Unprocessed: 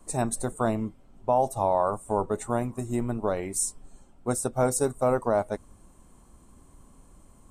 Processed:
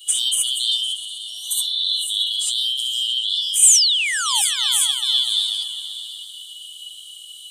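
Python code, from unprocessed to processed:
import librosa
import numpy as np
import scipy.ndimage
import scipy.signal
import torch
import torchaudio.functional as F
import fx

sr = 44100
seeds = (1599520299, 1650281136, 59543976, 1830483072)

p1 = fx.band_shuffle(x, sr, order='3412')
p2 = fx.spec_repair(p1, sr, seeds[0], start_s=1.12, length_s=0.67, low_hz=1600.0, high_hz=5300.0, source='both')
p3 = fx.rev_gated(p2, sr, seeds[1], gate_ms=90, shape='rising', drr_db=-3.0)
p4 = fx.over_compress(p3, sr, threshold_db=-32.0, ratio=-1.0)
p5 = p3 + F.gain(torch.from_numpy(p4), 0.0).numpy()
p6 = fx.spec_paint(p5, sr, seeds[2], shape='fall', start_s=3.62, length_s=0.8, low_hz=770.0, high_hz=9000.0, level_db=-16.0)
p7 = scipy.signal.lfilter([1.0, -0.97], [1.0], p6)
p8 = p7 + fx.echo_opening(p7, sr, ms=126, hz=200, octaves=2, feedback_pct=70, wet_db=-6, dry=0)
y = F.gain(torch.from_numpy(p8), 4.0).numpy()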